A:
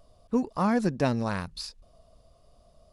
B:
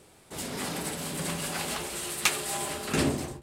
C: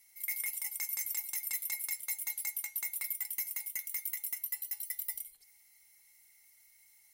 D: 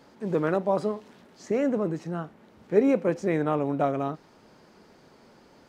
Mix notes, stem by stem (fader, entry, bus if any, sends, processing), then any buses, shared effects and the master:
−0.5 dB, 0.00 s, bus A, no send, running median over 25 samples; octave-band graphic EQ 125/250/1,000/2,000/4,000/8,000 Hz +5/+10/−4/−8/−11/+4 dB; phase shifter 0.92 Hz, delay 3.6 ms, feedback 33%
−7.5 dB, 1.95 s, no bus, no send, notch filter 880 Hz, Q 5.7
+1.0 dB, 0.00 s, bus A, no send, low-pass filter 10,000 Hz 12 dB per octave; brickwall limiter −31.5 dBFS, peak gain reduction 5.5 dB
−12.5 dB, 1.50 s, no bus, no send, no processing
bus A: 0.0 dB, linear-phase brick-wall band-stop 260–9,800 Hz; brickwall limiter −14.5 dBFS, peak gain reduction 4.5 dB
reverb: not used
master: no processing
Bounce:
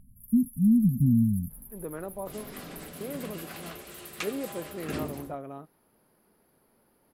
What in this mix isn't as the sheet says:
stem C +1.0 dB → +8.5 dB
master: extra high-shelf EQ 5,100 Hz −11.5 dB

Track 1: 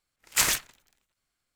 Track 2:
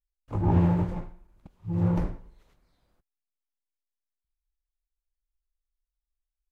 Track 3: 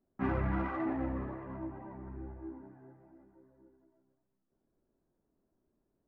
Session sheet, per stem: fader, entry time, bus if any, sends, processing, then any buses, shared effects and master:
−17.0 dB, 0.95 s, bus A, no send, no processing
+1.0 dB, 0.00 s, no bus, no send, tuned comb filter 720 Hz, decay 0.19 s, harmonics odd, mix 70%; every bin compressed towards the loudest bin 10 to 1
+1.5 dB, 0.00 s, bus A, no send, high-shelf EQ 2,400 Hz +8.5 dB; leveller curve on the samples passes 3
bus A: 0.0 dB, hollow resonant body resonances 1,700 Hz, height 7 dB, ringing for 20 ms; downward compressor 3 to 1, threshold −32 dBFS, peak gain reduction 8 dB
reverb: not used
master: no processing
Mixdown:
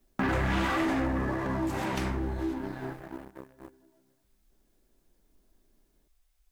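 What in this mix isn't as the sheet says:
stem 1: entry 0.95 s → 1.30 s
stem 3 +1.5 dB → +11.0 dB

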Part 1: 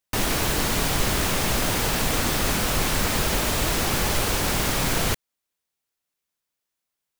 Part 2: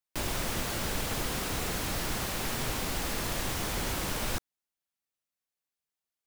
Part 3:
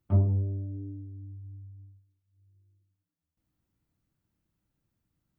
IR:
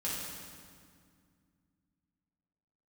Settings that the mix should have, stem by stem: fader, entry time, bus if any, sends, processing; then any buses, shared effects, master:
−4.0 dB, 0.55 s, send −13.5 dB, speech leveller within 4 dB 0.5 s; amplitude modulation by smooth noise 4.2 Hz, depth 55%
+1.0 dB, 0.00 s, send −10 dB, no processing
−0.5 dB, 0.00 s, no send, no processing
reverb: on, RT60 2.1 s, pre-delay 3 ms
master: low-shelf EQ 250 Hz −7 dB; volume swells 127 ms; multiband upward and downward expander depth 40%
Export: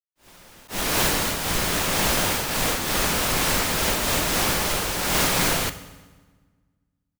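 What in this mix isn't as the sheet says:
stem 1 −4.0 dB → +3.5 dB
stem 2 +1.0 dB → −9.0 dB
stem 3: muted

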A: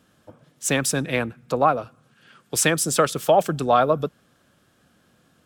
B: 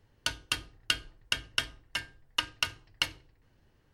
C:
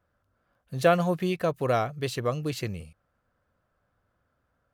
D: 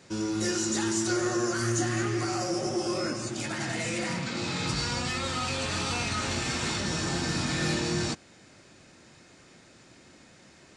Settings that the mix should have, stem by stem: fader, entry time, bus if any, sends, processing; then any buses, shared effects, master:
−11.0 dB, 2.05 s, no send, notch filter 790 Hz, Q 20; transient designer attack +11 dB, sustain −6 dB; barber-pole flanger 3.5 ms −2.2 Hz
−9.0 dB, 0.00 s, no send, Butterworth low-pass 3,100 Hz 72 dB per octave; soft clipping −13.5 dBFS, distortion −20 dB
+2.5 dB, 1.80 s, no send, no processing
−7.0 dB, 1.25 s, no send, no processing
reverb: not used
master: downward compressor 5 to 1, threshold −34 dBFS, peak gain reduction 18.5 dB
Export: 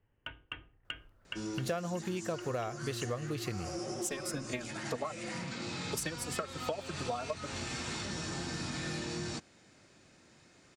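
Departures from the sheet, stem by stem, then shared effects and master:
stem A: entry 2.05 s → 3.40 s
stem C: entry 1.80 s → 0.85 s

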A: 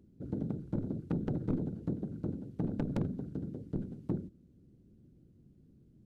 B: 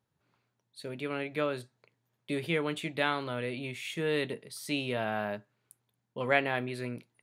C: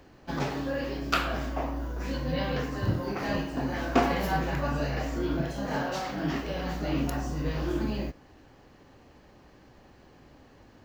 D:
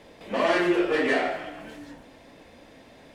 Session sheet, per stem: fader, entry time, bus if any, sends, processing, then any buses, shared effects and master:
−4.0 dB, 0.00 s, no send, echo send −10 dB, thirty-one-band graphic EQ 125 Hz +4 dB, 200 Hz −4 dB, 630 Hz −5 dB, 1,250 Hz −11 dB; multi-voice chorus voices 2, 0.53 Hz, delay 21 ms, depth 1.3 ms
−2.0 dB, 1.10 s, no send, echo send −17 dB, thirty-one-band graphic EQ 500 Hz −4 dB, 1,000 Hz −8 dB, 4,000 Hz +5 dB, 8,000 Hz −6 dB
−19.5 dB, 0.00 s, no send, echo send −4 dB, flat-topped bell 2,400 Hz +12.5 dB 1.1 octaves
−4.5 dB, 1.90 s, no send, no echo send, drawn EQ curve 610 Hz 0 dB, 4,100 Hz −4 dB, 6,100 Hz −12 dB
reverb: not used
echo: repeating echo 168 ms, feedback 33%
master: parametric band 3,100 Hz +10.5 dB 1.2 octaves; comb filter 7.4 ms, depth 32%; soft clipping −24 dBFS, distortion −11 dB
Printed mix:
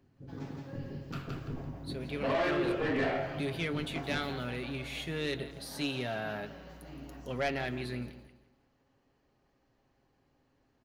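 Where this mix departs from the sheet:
stem C: missing flat-topped bell 2,400 Hz +12.5 dB 1.1 octaves
master: missing parametric band 3,100 Hz +10.5 dB 1.2 octaves

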